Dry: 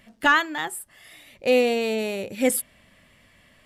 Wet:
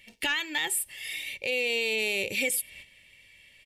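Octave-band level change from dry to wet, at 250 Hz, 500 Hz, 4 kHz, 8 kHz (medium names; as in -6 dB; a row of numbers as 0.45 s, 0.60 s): -14.0 dB, -10.0 dB, +1.5 dB, +0.5 dB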